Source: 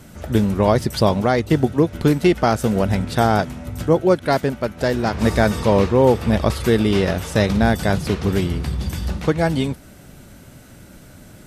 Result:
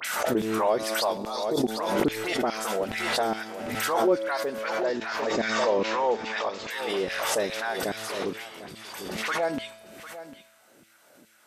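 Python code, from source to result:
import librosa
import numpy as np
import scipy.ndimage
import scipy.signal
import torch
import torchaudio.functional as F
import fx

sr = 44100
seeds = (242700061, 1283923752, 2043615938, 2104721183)

y = fx.spec_erase(x, sr, start_s=1.16, length_s=0.62, low_hz=1300.0, high_hz=3300.0)
y = fx.steep_lowpass(y, sr, hz=7500.0, slope=96, at=(4.55, 6.66))
y = fx.dispersion(y, sr, late='highs', ms=49.0, hz=2600.0)
y = fx.filter_lfo_highpass(y, sr, shape='saw_down', hz=2.4, low_hz=250.0, high_hz=2700.0, q=1.8)
y = fx.comb_fb(y, sr, f0_hz=110.0, decay_s=1.2, harmonics='all', damping=0.0, mix_pct=60)
y = y + 10.0 ** (-14.5 / 20.0) * np.pad(y, (int(750 * sr / 1000.0), 0))[:len(y)]
y = fx.pre_swell(y, sr, db_per_s=32.0)
y = y * librosa.db_to_amplitude(-4.0)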